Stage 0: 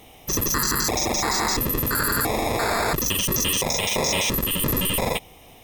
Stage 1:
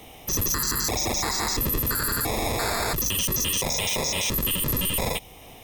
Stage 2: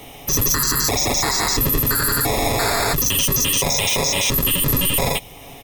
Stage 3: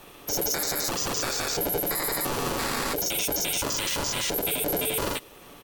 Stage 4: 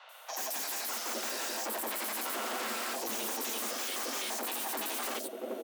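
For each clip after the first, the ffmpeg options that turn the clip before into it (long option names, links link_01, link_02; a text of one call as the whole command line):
ffmpeg -i in.wav -filter_complex "[0:a]acrossover=split=120|3000[link_01][link_02][link_03];[link_02]acompressor=threshold=-37dB:ratio=1.5[link_04];[link_01][link_04][link_03]amix=inputs=3:normalize=0,alimiter=limit=-18.5dB:level=0:latency=1:release=20,volume=2.5dB" out.wav
ffmpeg -i in.wav -af "aecho=1:1:7.2:0.42,volume=6dB" out.wav
ffmpeg -i in.wav -af "aeval=exprs='val(0)*sin(2*PI*440*n/s)':channel_layout=same,volume=-6dB" out.wav
ffmpeg -i in.wav -filter_complex "[0:a]acrossover=split=380|4700[link_01][link_02][link_03];[link_03]adelay=90[link_04];[link_01]adelay=770[link_05];[link_05][link_02][link_04]amix=inputs=3:normalize=0,aeval=exprs='0.0398*(abs(mod(val(0)/0.0398+3,4)-2)-1)':channel_layout=same,afreqshift=210,volume=-2.5dB" out.wav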